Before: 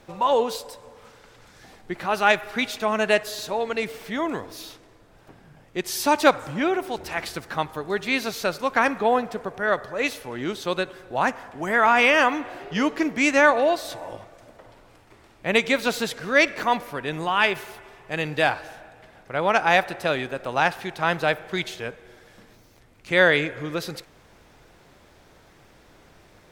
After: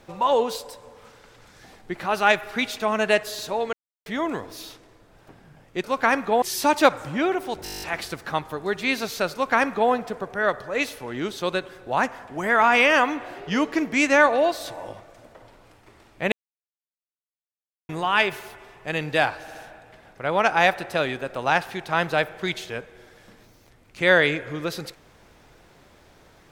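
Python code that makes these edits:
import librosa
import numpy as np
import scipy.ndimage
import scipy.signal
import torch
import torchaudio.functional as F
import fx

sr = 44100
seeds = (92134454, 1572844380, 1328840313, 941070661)

y = fx.edit(x, sr, fx.silence(start_s=3.73, length_s=0.33),
    fx.stutter(start_s=7.06, slice_s=0.02, count=10),
    fx.duplicate(start_s=8.57, length_s=0.58, to_s=5.84),
    fx.silence(start_s=15.56, length_s=1.57),
    fx.stutter(start_s=18.65, slice_s=0.07, count=3), tone=tone)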